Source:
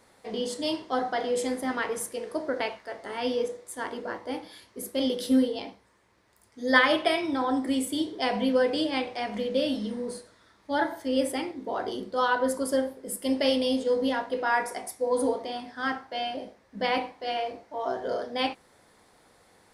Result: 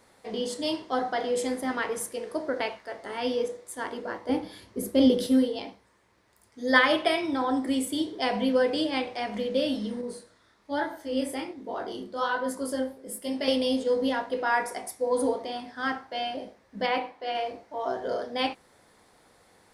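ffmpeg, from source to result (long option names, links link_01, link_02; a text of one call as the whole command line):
ffmpeg -i in.wav -filter_complex "[0:a]asettb=1/sr,asplit=3[link_01][link_02][link_03];[link_01]atrim=end=4.294[link_04];[link_02]atrim=start=4.29:end=5.27,asetpts=PTS-STARTPTS,afade=type=in:duration=0.004:curve=qsin,afade=type=out:start_time=0.976:duration=0.004:curve=qsin,lowshelf=frequency=480:gain=11.5[link_05];[link_03]atrim=start=5.266[link_06];[link_04][link_05]acrossfade=duration=0.004:curve1=hsin:curve2=qsin[link_07];[link_07][link_06]acrossfade=duration=0.004:curve1=qsin:curve2=hsin,asettb=1/sr,asplit=3[link_08][link_09][link_10];[link_08]atrim=end=10.014[link_11];[link_09]atrim=start=10.01:end=13.48,asetpts=PTS-STARTPTS,afade=type=in:duration=0.004:curve=qsin,afade=type=out:start_time=3.466:duration=0.004:curve=qsin,flanger=delay=20:depth=7.6:speed=1.2[link_12];[link_10]atrim=start=13.476[link_13];[link_11][link_12]acrossfade=duration=0.004:curve1=hsin:curve2=qsin[link_14];[link_14][link_13]acrossfade=duration=0.004:curve1=qsin:curve2=hsin,asettb=1/sr,asplit=3[link_15][link_16][link_17];[link_15]atrim=end=16.864[link_18];[link_16]atrim=start=16.86:end=17.35,asetpts=PTS-STARTPTS,afade=type=in:duration=0.004:curve=qsin,afade=type=out:start_time=0.486:duration=0.004:curve=qsin,bass=frequency=250:gain=-7,treble=frequency=4000:gain=-7[link_19];[link_17]atrim=start=17.346[link_20];[link_18][link_19]acrossfade=duration=0.004:curve1=hsin:curve2=qsin[link_21];[link_21][link_20]acrossfade=duration=0.004:curve1=qsin:curve2=hsin" out.wav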